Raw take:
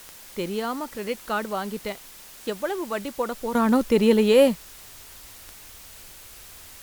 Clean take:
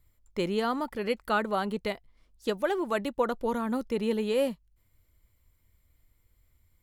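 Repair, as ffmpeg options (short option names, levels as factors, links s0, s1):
-af "adeclick=t=4,afwtdn=0.0056,asetnsamples=n=441:p=0,asendcmd='3.55 volume volume -10.5dB',volume=1"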